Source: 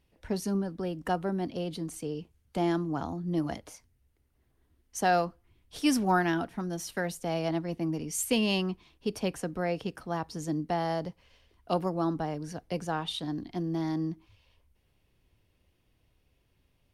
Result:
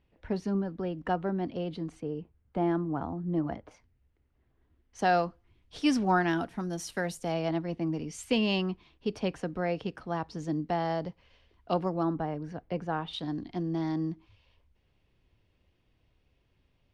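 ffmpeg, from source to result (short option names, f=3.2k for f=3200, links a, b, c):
-af "asetnsamples=n=441:p=0,asendcmd='2 lowpass f 1700;3.71 lowpass f 2900;4.99 lowpass f 5200;6.31 lowpass f 10000;7.32 lowpass f 4300;12.03 lowpass f 2300;13.13 lowpass f 4700',lowpass=3k"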